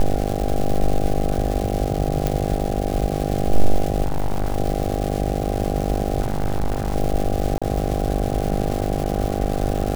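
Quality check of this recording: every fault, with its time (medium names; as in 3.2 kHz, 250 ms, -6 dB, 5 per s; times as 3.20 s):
buzz 50 Hz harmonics 16 -24 dBFS
crackle 550 per s -25 dBFS
2.27 s: pop
4.03–4.56 s: clipped -16.5 dBFS
6.20–6.96 s: clipped -16.5 dBFS
7.58–7.62 s: dropout 36 ms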